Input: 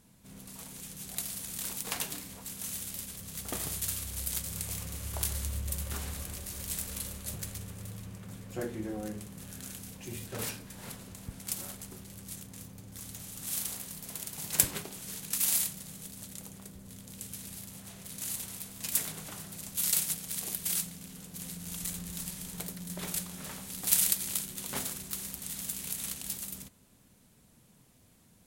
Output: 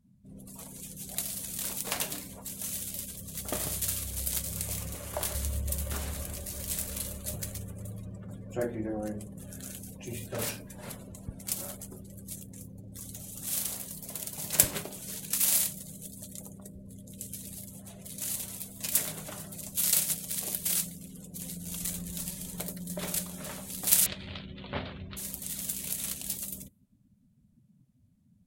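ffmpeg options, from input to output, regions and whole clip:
-filter_complex "[0:a]asettb=1/sr,asplit=3[a][b][c];[a]atrim=end=4.944[d];[b]atrim=start=4.94:end=5.35,asetpts=PTS-STARTPTS,afade=t=in:d=0.004:c=qsin,afade=t=out:st=0.406:d=0.004:c=qsin,highpass=f=140:p=1,equalizer=f=810:w=0.37:g=5.5,aeval=exprs='(tanh(11.2*val(0)+0.45)-tanh(0.45))/11.2':c=same[e];[c]atrim=start=5.346[f];[d][e]acrossfade=d=0.004:c1=hsin:c2=qsin[g];[g][f]acrossfade=d=0.004:c1=qsin:c2=hsin,asettb=1/sr,asplit=3[h][i][j];[h]atrim=end=24.064[k];[i]atrim=start=24.06:end=25.17,asetpts=PTS-STARTPTS,afade=t=in:d=0.004:c=qsin,afade=t=out:st=1.106:d=0.004:c=qsin,lowpass=f=3.7k:w=0.5412,lowpass=f=3.7k:w=1.3066,equalizer=f=85:w=2.2:g=12.5[l];[j]atrim=start=25.166[m];[k][l]acrossfade=d=0.004:c1=hsin:c2=qsin[n];[n][m]acrossfade=d=0.004:c1=qsin:c2=hsin,afftdn=nr=24:nf=-53,equalizer=f=600:w=6.6:g=8.5,volume=2.5dB"

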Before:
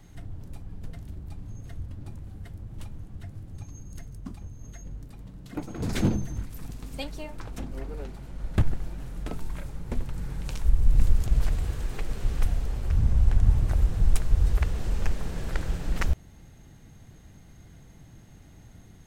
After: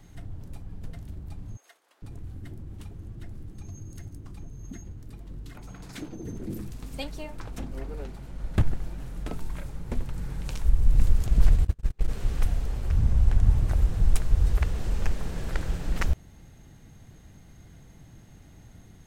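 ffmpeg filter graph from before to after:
-filter_complex "[0:a]asettb=1/sr,asplit=3[a][b][c];[a]atrim=end=1.574[d];[b]atrim=start=1.57:end=6.72,asetpts=PTS-STARTPTS,afade=t=in:d=0.004:c=qsin,afade=t=out:st=5.146:d=0.004:c=qsin,equalizer=f=350:t=o:w=0.66:g=6,acompressor=threshold=-34dB:ratio=3:attack=3.2:release=140:knee=1:detection=peak,acrossover=split=650[e][f];[e]adelay=450[g];[g][f]amix=inputs=2:normalize=0,atrim=end_sample=227115[h];[c]atrim=start=6.716[i];[d][h]acrossfade=d=0.004:c1=hsin:c2=qsin[j];[j][i]acrossfade=d=0.004:c1=qsin:c2=hsin,asettb=1/sr,asplit=3[k][l][m];[k]atrim=end=11.384[n];[l]atrim=start=11.38:end=12.09,asetpts=PTS-STARTPTS,afade=t=in:d=0.004:c=qsin,afade=t=out:st=0.706:d=0.004:c=qsin,agate=range=-37dB:threshold=-27dB:ratio=16:release=100:detection=peak,lowshelf=f=180:g=7.5[o];[m]atrim=start=12.086[p];[n][o]acrossfade=d=0.004:c1=hsin:c2=qsin[q];[q][p]acrossfade=d=0.004:c1=qsin:c2=hsin"

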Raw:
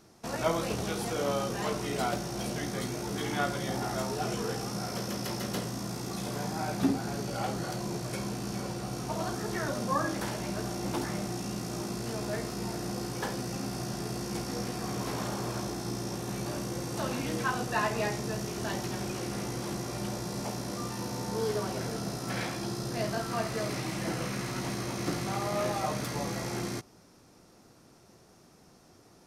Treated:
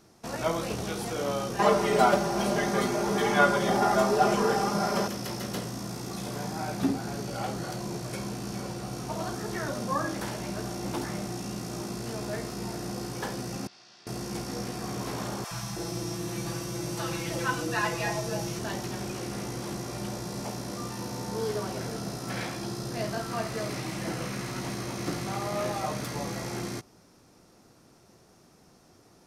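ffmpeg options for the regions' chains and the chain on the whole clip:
-filter_complex "[0:a]asettb=1/sr,asplit=3[a][b][c];[a]atrim=end=1.594[d];[b]atrim=start=1.59:end=5.08,asetpts=PTS-STARTPTS,afade=t=in:d=0.004:c=qsin,afade=t=out:st=3.486:d=0.004:c=qsin,equalizer=f=830:w=0.49:g=10,aecho=1:1:5:0.84,atrim=end_sample=153909[e];[c]atrim=start=5.076[f];[d][e]acrossfade=d=0.004:c1=hsin:c2=qsin[g];[g][f]acrossfade=d=0.004:c1=qsin:c2=hsin,asettb=1/sr,asplit=3[h][i][j];[h]atrim=end=13.674[k];[i]atrim=start=13.67:end=14.07,asetpts=PTS-STARTPTS,afade=t=in:d=0.004:c=qsin,afade=t=out:st=0.396:d=0.004:c=qsin,lowpass=f=4.3k:w=0.5412,lowpass=f=4.3k:w=1.3066,aderivative[l];[j]atrim=start=14.066[m];[k][l]acrossfade=d=0.004:c1=hsin:c2=qsin[n];[n][m]acrossfade=d=0.004:c1=qsin:c2=hsin,asettb=1/sr,asplit=3[o][p][q];[o]atrim=end=15.444[r];[p]atrim=start=15.44:end=18.59,asetpts=PTS-STARTPTS,afade=t=in:d=0.004:c=qsin,afade=t=out:st=3.146:d=0.004:c=qsin,aecho=1:1:6:0.88,atrim=end_sample=138915,acrossover=split=220|700[s][t][u];[s]adelay=70[v];[t]adelay=320[w];[v][w][u]amix=inputs=3:normalize=0,atrim=end_sample=138915[x];[q]atrim=start=18.586[y];[r][x]acrossfade=d=0.004:c1=hsin:c2=qsin[z];[z][y]acrossfade=d=0.004:c1=qsin:c2=hsin"

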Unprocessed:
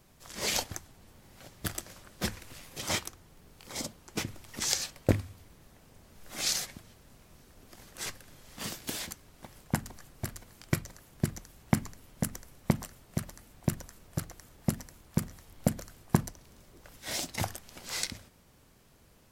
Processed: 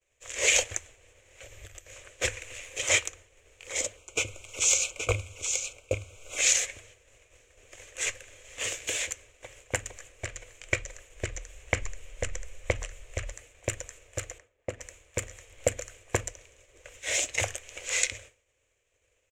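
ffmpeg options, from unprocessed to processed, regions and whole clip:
-filter_complex "[0:a]asettb=1/sr,asplit=3[a][b][c];[a]atrim=end=1.434[d];[b]atrim=start=1.43:end=1.93,asetpts=PTS-STARTPTS,afade=t=in:d=0.004:c=qsin,afade=t=out:st=0.496:d=0.004:c=qsin,acompressor=threshold=-49dB:ratio=8:attack=3.2:release=140:knee=1:detection=peak,aeval=exprs='val(0)+0.000891*sin(2*PI*12000*n/s)':c=same,lowshelf=f=140:g=11[e];[c]atrim=start=1.926[f];[d][e]acrossfade=d=0.004:c1=hsin:c2=qsin[g];[g][f]acrossfade=d=0.004:c1=qsin:c2=hsin,asettb=1/sr,asplit=3[h][i][j];[h]atrim=end=3.974[k];[i]atrim=start=3.97:end=6.38,asetpts=PTS-STARTPTS,afade=t=in:d=0.004:c=qsin,afade=t=out:st=2.406:d=0.004:c=qsin,aecho=1:1:823:0.447,atrim=end_sample=106281,aeval=exprs='0.119*(abs(mod(val(0)/0.119+3,4)-2)-1)':c=same,asuperstop=centerf=1800:order=8:qfactor=2.8[l];[j]atrim=start=6.376[m];[k][l]acrossfade=d=0.004:c1=hsin:c2=qsin[n];[n][m]acrossfade=d=0.004:c1=qsin:c2=hsin,asettb=1/sr,asplit=3[o][p][q];[o]atrim=end=10.124[r];[p]atrim=start=10.12:end=13.32,asetpts=PTS-STARTPTS,afade=t=in:d=0.004:c=qsin,afade=t=out:st=3.196:d=0.004:c=qsin,acrossover=split=7000[s][t];[t]acompressor=threshold=-55dB:ratio=4:attack=1:release=60[u];[s][u]amix=inputs=2:normalize=0,asubboost=boost=10.5:cutoff=54[v];[q]atrim=start=13.316[w];[r][v]acrossfade=d=0.004:c1=hsin:c2=qsin[x];[x][w]acrossfade=d=0.004:c1=qsin:c2=hsin,asettb=1/sr,asplit=3[y][z][aa];[y]atrim=end=14.384[ab];[z]atrim=start=14.38:end=14.81,asetpts=PTS-STARTPTS,afade=t=in:d=0.004:c=qsin,afade=t=out:st=0.426:d=0.004:c=qsin,lowpass=f=1.1k:p=1,lowshelf=f=110:g=-10.5[ac];[aa]atrim=start=14.806[ad];[ab][ac]acrossfade=d=0.004:c1=hsin:c2=qsin[ae];[ae][ad]acrossfade=d=0.004:c1=qsin:c2=hsin,bandreject=f=1.4k:w=18,agate=range=-33dB:threshold=-50dB:ratio=3:detection=peak,firequalizer=gain_entry='entry(110,0);entry(160,-25);entry(270,-9);entry(500,11);entry(810,-4);entry(2400,14);entry(4700,-5);entry(6900,14);entry(11000,-10)':delay=0.05:min_phase=1"

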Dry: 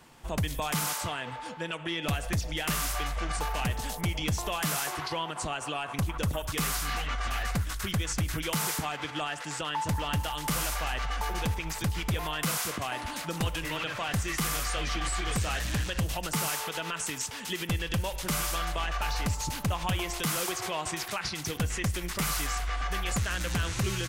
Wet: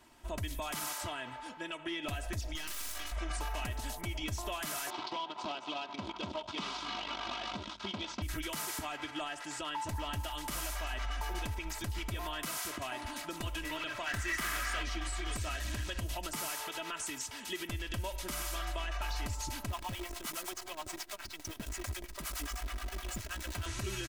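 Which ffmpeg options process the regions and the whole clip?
-filter_complex "[0:a]asettb=1/sr,asplit=3[a][b][c];[a]atrim=end=2.554[d];[b]atrim=start=2.55:end=3.12,asetpts=PTS-STARTPTS,afade=t=in:d=0.004:c=qsin,afade=t=out:st=0.566:d=0.004:c=qsin,tiltshelf=f=970:g=-8.5,aeval=exprs='max(val(0),0)':c=same[e];[c]atrim=start=3.116[f];[d][e]acrossfade=d=0.004:c1=hsin:c2=qsin[g];[g][f]acrossfade=d=0.004:c1=qsin:c2=hsin,asettb=1/sr,asplit=3[h][i][j];[h]atrim=end=4.904[k];[i]atrim=start=4.9:end=8.22,asetpts=PTS-STARTPTS,afade=t=in:d=0.004:c=qsin,afade=t=out:st=3.316:d=0.004:c=qsin,acrusher=bits=6:dc=4:mix=0:aa=0.000001,highpass=180,equalizer=f=200:t=q:w=4:g=8,equalizer=f=920:t=q:w=4:g=7,equalizer=f=1.8k:t=q:w=4:g=-10,equalizer=f=3.4k:t=q:w=4:g=5,lowpass=f=4.9k:w=0.5412,lowpass=f=4.9k:w=1.3066[l];[j]atrim=start=8.216[m];[k][l]acrossfade=d=0.004:c1=hsin:c2=qsin[n];[n][m]acrossfade=d=0.004:c1=qsin:c2=hsin,asettb=1/sr,asplit=3[o][p][q];[o]atrim=end=14.064[r];[p]atrim=start=14.06:end=14.83,asetpts=PTS-STARTPTS,afade=t=in:d=0.004:c=qsin,afade=t=out:st=0.766:d=0.004:c=qsin,equalizer=f=1.7k:w=1.2:g=12,asoftclip=type=hard:threshold=-23.5dB[s];[q]atrim=start=14.826[t];[r][s]acrossfade=d=0.004:c1=hsin:c2=qsin[u];[u][t]acrossfade=d=0.004:c1=qsin:c2=hsin,asettb=1/sr,asplit=3[v][w][x];[v]atrim=end=19.704[y];[w]atrim=start=19.7:end=23.66,asetpts=PTS-STARTPTS,afade=t=in:d=0.004:c=qsin,afade=t=out:st=3.956:d=0.004:c=qsin,acrossover=split=470[z][aa];[z]aeval=exprs='val(0)*(1-1/2+1/2*cos(2*PI*9.5*n/s))':c=same[ab];[aa]aeval=exprs='val(0)*(1-1/2-1/2*cos(2*PI*9.5*n/s))':c=same[ac];[ab][ac]amix=inputs=2:normalize=0,acrusher=bits=7:dc=4:mix=0:aa=0.000001[ad];[x]atrim=start=23.656[ae];[y][ad]acrossfade=d=0.004:c1=hsin:c2=qsin[af];[af][ae]acrossfade=d=0.004:c1=qsin:c2=hsin,aecho=1:1:3.1:0.69,alimiter=limit=-21dB:level=0:latency=1:release=76,volume=-7dB"

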